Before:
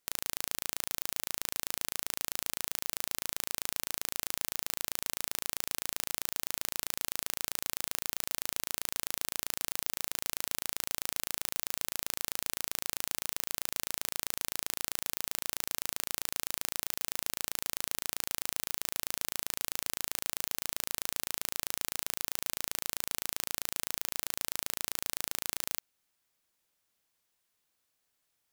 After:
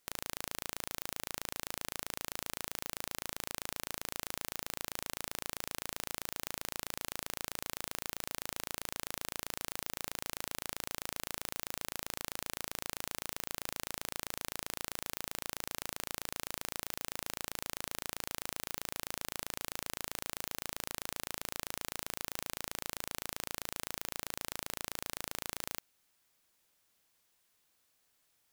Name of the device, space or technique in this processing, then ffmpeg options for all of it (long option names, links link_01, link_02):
saturation between pre-emphasis and de-emphasis: -af "highshelf=frequency=2200:gain=9,asoftclip=type=tanh:threshold=-11.5dB,highshelf=frequency=2200:gain=-9,volume=4.5dB"